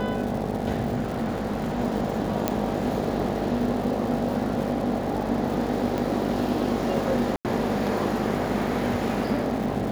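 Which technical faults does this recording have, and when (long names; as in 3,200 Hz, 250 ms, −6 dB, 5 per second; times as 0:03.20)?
mains buzz 50 Hz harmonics 16 −31 dBFS
surface crackle 310 per second −34 dBFS
0:00.95–0:01.80: clipping −22.5 dBFS
0:02.48: click −8 dBFS
0:05.98: click
0:07.36–0:07.45: drop-out 88 ms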